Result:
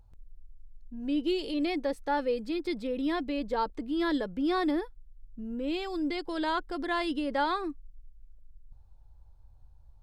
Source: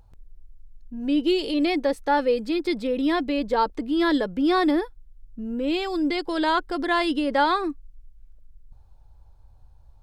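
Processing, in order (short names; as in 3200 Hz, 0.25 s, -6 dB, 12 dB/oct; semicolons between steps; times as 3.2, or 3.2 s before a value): low shelf 140 Hz +5 dB; gain -8 dB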